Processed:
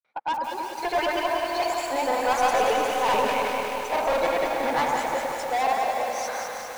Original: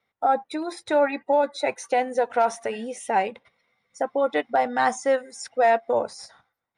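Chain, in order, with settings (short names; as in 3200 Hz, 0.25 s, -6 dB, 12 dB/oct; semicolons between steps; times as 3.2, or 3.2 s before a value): repeated pitch sweeps +3.5 st, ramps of 0.169 s; Doppler pass-by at 2.89, 11 m/s, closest 8 m; high shelf 5800 Hz -10.5 dB; reverse; upward compressor, threshold -37 dBFS; reverse; grains 0.1 s, pitch spread up and down by 0 st; chopper 1.3 Hz, depth 60%, duty 55%; overdrive pedal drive 27 dB, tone 5200 Hz, clips at -13.5 dBFS; on a send: echo with dull and thin repeats by turns 0.102 s, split 1400 Hz, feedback 81%, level -3 dB; on the sum: lo-fi delay 0.178 s, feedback 80%, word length 6-bit, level -7 dB; gain -3.5 dB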